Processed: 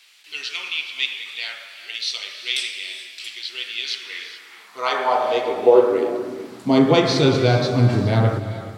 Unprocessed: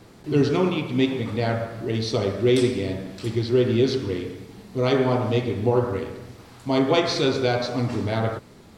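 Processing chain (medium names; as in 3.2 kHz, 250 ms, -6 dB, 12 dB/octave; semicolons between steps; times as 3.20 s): high-pass sweep 2.7 kHz -> 120 Hz, 3.80–7.21 s; gated-style reverb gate 450 ms rising, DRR 10.5 dB; trim +3 dB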